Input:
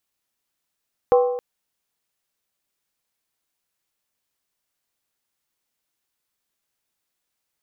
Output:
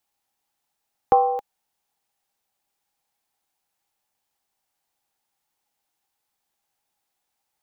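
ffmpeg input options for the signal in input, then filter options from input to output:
-f lavfi -i "aevalsrc='0.299*pow(10,-3*t/0.97)*sin(2*PI*492*t)+0.133*pow(10,-3*t/0.768)*sin(2*PI*784.2*t)+0.0596*pow(10,-3*t/0.664)*sin(2*PI*1050.9*t)+0.0266*pow(10,-3*t/0.64)*sin(2*PI*1129.6*t)+0.0119*pow(10,-3*t/0.596)*sin(2*PI*1305.3*t)':d=0.27:s=44100"
-filter_complex "[0:a]equalizer=f=810:w=4.7:g=14,acrossover=split=280|910[s0][s1][s2];[s1]acompressor=threshold=0.0794:ratio=6[s3];[s0][s3][s2]amix=inputs=3:normalize=0"

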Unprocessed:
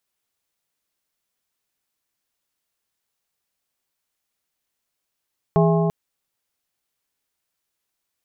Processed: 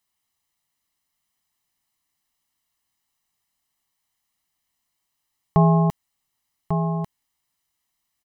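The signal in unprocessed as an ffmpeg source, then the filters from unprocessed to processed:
-f lavfi -i "aevalsrc='0.188*pow(10,-3*t/3.85)*sin(2*PI*165*t)+0.133*pow(10,-3*t/2.925)*sin(2*PI*412.5*t)+0.0944*pow(10,-3*t/2.54)*sin(2*PI*660*t)+0.0668*pow(10,-3*t/2.376)*sin(2*PI*825*t)+0.0473*pow(10,-3*t/2.196)*sin(2*PI*1072.5*t)':d=0.34:s=44100"
-filter_complex "[0:a]aecho=1:1:1:0.61,asplit=2[s0][s1];[s1]aecho=0:1:1145:0.447[s2];[s0][s2]amix=inputs=2:normalize=0"

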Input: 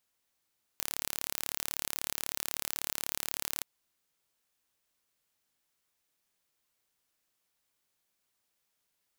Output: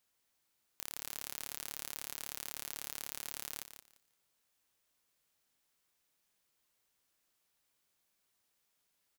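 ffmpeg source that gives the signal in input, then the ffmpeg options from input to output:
-f lavfi -i "aevalsrc='0.473*eq(mod(n,1218),0)':d=2.83:s=44100"
-filter_complex "[0:a]asoftclip=type=tanh:threshold=0.2,asplit=2[s0][s1];[s1]aecho=0:1:173|346|519:0.316|0.0632|0.0126[s2];[s0][s2]amix=inputs=2:normalize=0"

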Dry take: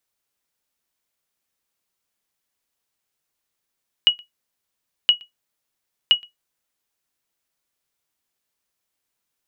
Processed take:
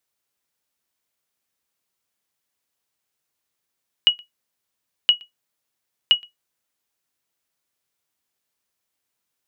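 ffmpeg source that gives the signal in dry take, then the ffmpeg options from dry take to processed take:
-f lavfi -i "aevalsrc='0.562*(sin(2*PI*2910*mod(t,1.02))*exp(-6.91*mod(t,1.02)/0.14)+0.0376*sin(2*PI*2910*max(mod(t,1.02)-0.12,0))*exp(-6.91*max(mod(t,1.02)-0.12,0)/0.14))':d=3.06:s=44100"
-af "highpass=51"

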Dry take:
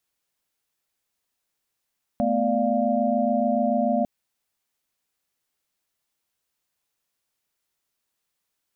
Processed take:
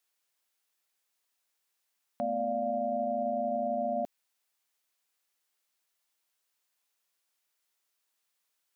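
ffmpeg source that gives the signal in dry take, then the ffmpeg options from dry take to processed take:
-f lavfi -i "aevalsrc='0.0562*(sin(2*PI*220*t)+sin(2*PI*246.94*t)+sin(2*PI*587.33*t)+sin(2*PI*698.46*t))':d=1.85:s=44100"
-af "highpass=f=640:p=1,alimiter=limit=0.0631:level=0:latency=1:release=38"

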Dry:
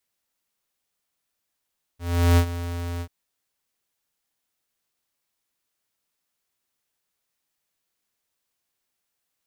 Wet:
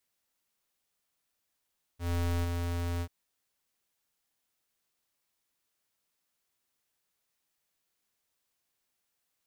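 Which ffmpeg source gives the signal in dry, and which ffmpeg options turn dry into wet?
-f lavfi -i "aevalsrc='0.178*(2*lt(mod(86.3*t,1),0.5)-1)':d=1.089:s=44100,afade=t=in:d=0.382,afade=t=out:st=0.382:d=0.08:silence=0.188,afade=t=out:st=1.02:d=0.069"
-af "aeval=exprs='(tanh(31.6*val(0)+0.4)-tanh(0.4))/31.6':c=same"

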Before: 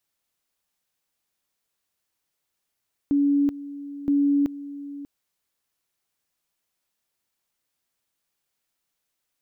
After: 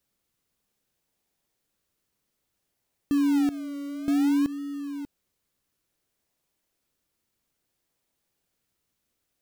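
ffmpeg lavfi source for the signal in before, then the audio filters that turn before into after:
-f lavfi -i "aevalsrc='pow(10,(-17-16*gte(mod(t,0.97),0.38))/20)*sin(2*PI*284*t)':d=1.94:s=44100"
-filter_complex "[0:a]asplit=2[s0][s1];[s1]acrusher=samples=40:mix=1:aa=0.000001:lfo=1:lforange=24:lforate=0.59,volume=0.398[s2];[s0][s2]amix=inputs=2:normalize=0,alimiter=limit=0.119:level=0:latency=1:release=52"

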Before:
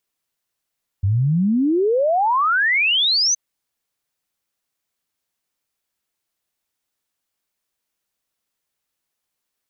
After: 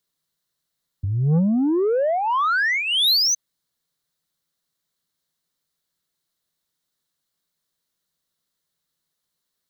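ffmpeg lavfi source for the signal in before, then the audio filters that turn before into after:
-f lavfi -i "aevalsrc='0.188*clip(min(t,2.32-t)/0.01,0,1)*sin(2*PI*92*2.32/log(6300/92)*(exp(log(6300/92)*t/2.32)-1))':d=2.32:s=44100"
-filter_complex "[0:a]equalizer=f=160:t=o:w=0.33:g=11,equalizer=f=800:t=o:w=0.33:g=-5,equalizer=f=2500:t=o:w=0.33:g=-9,equalizer=f=4000:t=o:w=0.33:g=7,acrossover=split=140[s0][s1];[s0]acompressor=threshold=0.0447:ratio=6[s2];[s2][s1]amix=inputs=2:normalize=0,asoftclip=type=tanh:threshold=0.178"

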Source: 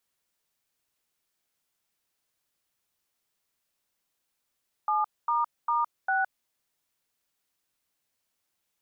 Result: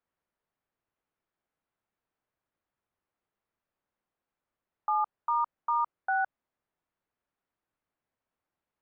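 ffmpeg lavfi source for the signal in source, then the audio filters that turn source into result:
-f lavfi -i "aevalsrc='0.0531*clip(min(mod(t,0.401),0.164-mod(t,0.401))/0.002,0,1)*(eq(floor(t/0.401),0)*(sin(2*PI*852*mod(t,0.401))+sin(2*PI*1209*mod(t,0.401)))+eq(floor(t/0.401),1)*(sin(2*PI*941*mod(t,0.401))+sin(2*PI*1209*mod(t,0.401)))+eq(floor(t/0.401),2)*(sin(2*PI*941*mod(t,0.401))+sin(2*PI*1209*mod(t,0.401)))+eq(floor(t/0.401),3)*(sin(2*PI*770*mod(t,0.401))+sin(2*PI*1477*mod(t,0.401))))':d=1.604:s=44100"
-af "lowpass=1500"

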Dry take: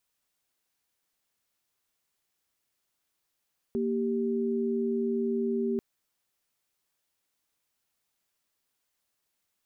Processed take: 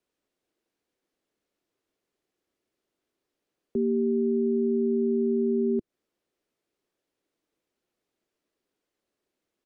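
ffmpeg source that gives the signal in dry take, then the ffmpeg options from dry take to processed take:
-f lavfi -i "aevalsrc='0.0376*(sin(2*PI*233.08*t)+sin(2*PI*392*t))':d=2.04:s=44100"
-filter_complex "[0:a]aemphasis=mode=reproduction:type=50kf,acrossover=split=130|240[s0][s1][s2];[s2]alimiter=level_in=3.98:limit=0.0631:level=0:latency=1:release=165,volume=0.251[s3];[s0][s1][s3]amix=inputs=3:normalize=0,firequalizer=gain_entry='entry(110,0);entry(340,13);entry(850,-1)':delay=0.05:min_phase=1"

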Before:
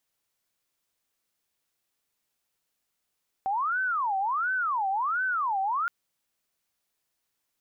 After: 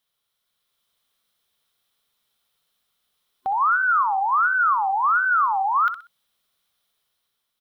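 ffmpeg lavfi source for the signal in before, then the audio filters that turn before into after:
-f lavfi -i "aevalsrc='0.0596*sin(2*PI*(1148.5*t-381.5/(2*PI*1.4)*sin(2*PI*1.4*t)))':d=2.42:s=44100"
-filter_complex "[0:a]superequalizer=6b=0.501:10b=1.58:13b=2.51:15b=0.562,dynaudnorm=f=200:g=7:m=1.78,asplit=2[s0][s1];[s1]aecho=0:1:63|126|189:0.299|0.0866|0.0251[s2];[s0][s2]amix=inputs=2:normalize=0"

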